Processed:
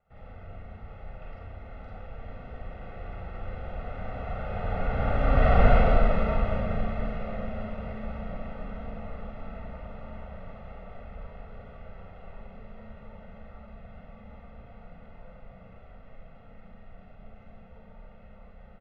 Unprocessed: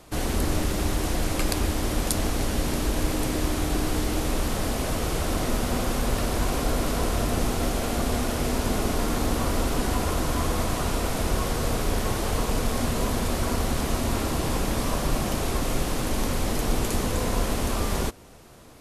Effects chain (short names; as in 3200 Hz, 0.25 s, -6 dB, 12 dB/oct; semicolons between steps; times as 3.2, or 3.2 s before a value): Doppler pass-by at 5.62, 43 m/s, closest 12 m; LPF 2400 Hz 24 dB/oct; comb 1.5 ms, depth 96%; Schroeder reverb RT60 0.47 s, combs from 33 ms, DRR -2.5 dB